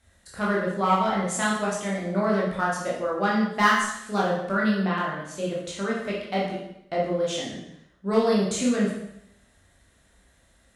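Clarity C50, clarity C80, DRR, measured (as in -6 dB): 2.0 dB, 6.0 dB, -5.5 dB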